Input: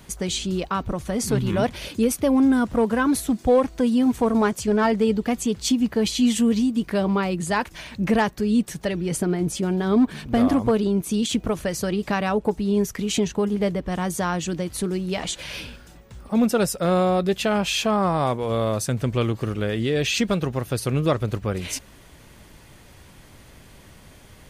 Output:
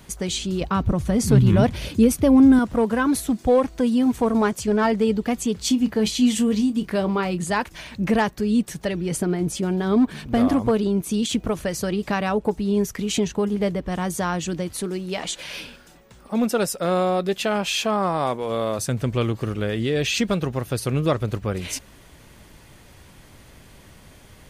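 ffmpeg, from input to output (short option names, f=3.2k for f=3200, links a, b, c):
-filter_complex "[0:a]asettb=1/sr,asplit=3[a][b][c];[a]atrim=end=0.614[d];[b]atrim=start=0.61:end=2.59,asetpts=PTS-STARTPTS,afade=t=in:d=0.004:c=qsin,afade=t=out:st=1.976:d=0.004:c=qsin,equalizer=f=89:t=o:w=2.8:g=11[e];[c]atrim=start=2.586[f];[d][e]acrossfade=d=0.004:c1=hsin:c2=qsin[g];[g][f]acrossfade=d=0.004:c1=qsin:c2=hsin,asettb=1/sr,asplit=3[h][i][j];[h]atrim=end=5.524[k];[i]atrim=start=5.52:end=7.5,asetpts=PTS-STARTPTS,afade=t=in:d=0.004:c=qsin,afade=t=out:st=1.976:d=0.004:c=qsin,asplit=2[l][m];[m]adelay=28,volume=-12dB[n];[l][n]amix=inputs=2:normalize=0,atrim=end_sample=87318[o];[j]atrim=start=7.496[p];[k][o]acrossfade=d=0.004:c1=hsin:c2=qsin[q];[q][p]acrossfade=d=0.004:c1=qsin:c2=hsin,asettb=1/sr,asplit=3[r][s][t];[r]atrim=end=14.724[u];[s]atrim=start=14.72:end=18.79,asetpts=PTS-STARTPTS,afade=t=in:d=0.004:c=qsin,afade=t=out:st=4.066:d=0.004:c=qsin,equalizer=f=72:w=0.8:g=-13.5[v];[t]atrim=start=18.786[w];[u][v]acrossfade=d=0.004:c1=hsin:c2=qsin[x];[x][w]acrossfade=d=0.004:c1=qsin:c2=hsin"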